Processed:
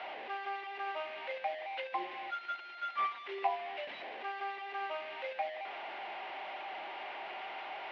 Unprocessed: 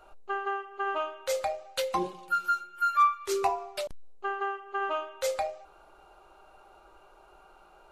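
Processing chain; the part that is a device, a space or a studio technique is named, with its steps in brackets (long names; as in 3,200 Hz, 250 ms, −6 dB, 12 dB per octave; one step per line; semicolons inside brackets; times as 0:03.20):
digital answering machine (band-pass filter 300–3,100 Hz; linear delta modulator 32 kbit/s, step −30.5 dBFS; loudspeaker in its box 420–3,100 Hz, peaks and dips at 480 Hz −7 dB, 730 Hz +5 dB, 1,300 Hz −9 dB, 2,100 Hz +7 dB, 2,900 Hz +3 dB)
level −6.5 dB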